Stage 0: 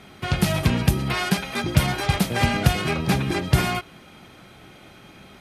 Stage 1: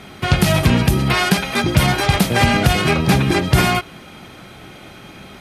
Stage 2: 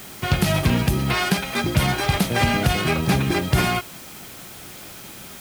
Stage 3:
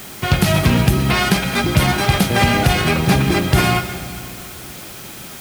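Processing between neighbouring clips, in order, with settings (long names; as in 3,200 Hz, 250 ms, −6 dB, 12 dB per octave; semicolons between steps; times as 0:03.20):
boost into a limiter +9 dB; level −1 dB
bit-depth reduction 6 bits, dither triangular; level −5 dB
convolution reverb RT60 2.4 s, pre-delay 107 ms, DRR 9.5 dB; level +4.5 dB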